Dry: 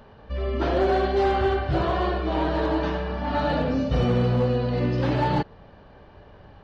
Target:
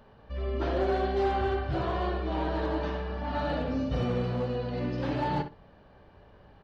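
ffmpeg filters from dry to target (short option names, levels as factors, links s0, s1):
-filter_complex "[0:a]asplit=2[s0][s1];[s1]adelay=61,lowpass=f=3100:p=1,volume=0.355,asplit=2[s2][s3];[s3]adelay=61,lowpass=f=3100:p=1,volume=0.16[s4];[s0][s2][s4]amix=inputs=3:normalize=0,volume=0.447"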